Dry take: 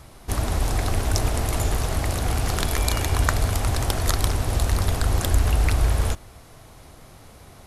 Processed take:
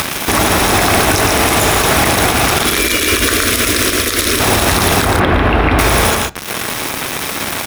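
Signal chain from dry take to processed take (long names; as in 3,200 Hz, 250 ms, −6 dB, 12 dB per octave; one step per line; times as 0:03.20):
high-pass filter 94 Hz 6 dB per octave
low-shelf EQ 370 Hz −9.5 dB
upward compression, threshold −31 dBFS
bit-depth reduction 6 bits, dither none
0:02.65–0:04.40: phaser with its sweep stopped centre 340 Hz, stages 4
0:05.05–0:05.79: high-frequency loss of the air 470 metres
loudspeakers that aren't time-aligned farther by 39 metres −8 dB, 50 metres −10 dB
convolution reverb RT60 0.55 s, pre-delay 3 ms, DRR 14.5 dB
boost into a limiter +21 dB
level −1 dB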